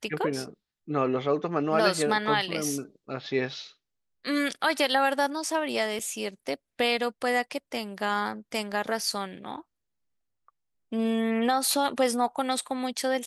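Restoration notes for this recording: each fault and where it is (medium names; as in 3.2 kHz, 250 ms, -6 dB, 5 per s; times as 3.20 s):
5.99–6.00 s: dropout 5.3 ms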